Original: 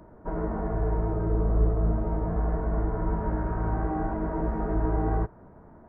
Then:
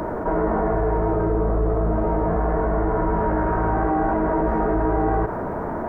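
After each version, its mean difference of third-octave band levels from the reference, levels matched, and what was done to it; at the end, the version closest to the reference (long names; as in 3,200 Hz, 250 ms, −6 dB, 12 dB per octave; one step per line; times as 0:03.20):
3.5 dB: bass and treble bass −9 dB, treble −1 dB
envelope flattener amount 70%
level +7 dB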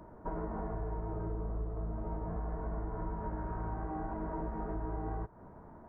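1.5 dB: parametric band 960 Hz +4 dB 0.57 octaves
downward compressor 6 to 1, threshold −32 dBFS, peak gain reduction 14 dB
level −2.5 dB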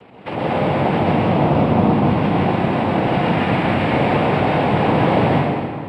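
8.5 dB: cochlear-implant simulation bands 4
dense smooth reverb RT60 2 s, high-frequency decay 0.75×, pre-delay 115 ms, DRR −5.5 dB
level +7.5 dB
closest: second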